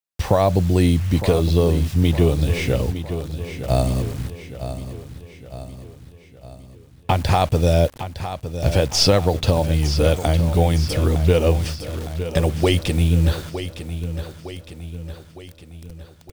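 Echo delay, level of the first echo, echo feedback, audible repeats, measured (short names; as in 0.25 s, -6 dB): 0.91 s, -11.0 dB, 52%, 5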